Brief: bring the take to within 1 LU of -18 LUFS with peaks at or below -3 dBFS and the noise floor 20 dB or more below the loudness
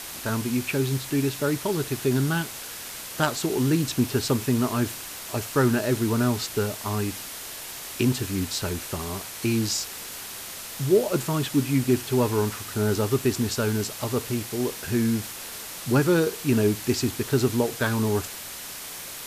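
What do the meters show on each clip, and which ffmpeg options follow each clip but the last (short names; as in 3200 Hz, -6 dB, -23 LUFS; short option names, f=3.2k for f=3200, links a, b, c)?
noise floor -38 dBFS; noise floor target -46 dBFS; loudness -26.0 LUFS; peak -8.5 dBFS; loudness target -18.0 LUFS
-> -af "afftdn=nr=8:nf=-38"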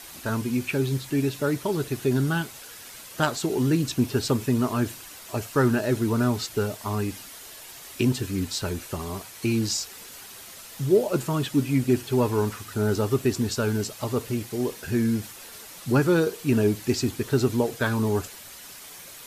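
noise floor -44 dBFS; noise floor target -46 dBFS
-> -af "afftdn=nr=6:nf=-44"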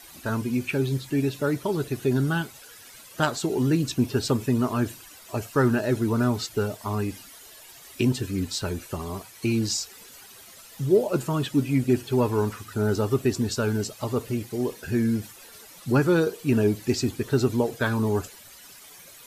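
noise floor -48 dBFS; loudness -25.5 LUFS; peak -9.0 dBFS; loudness target -18.0 LUFS
-> -af "volume=7.5dB,alimiter=limit=-3dB:level=0:latency=1"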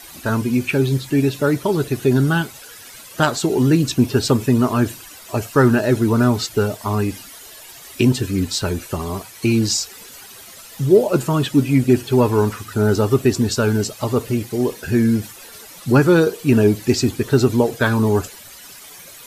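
loudness -18.0 LUFS; peak -3.0 dBFS; noise floor -40 dBFS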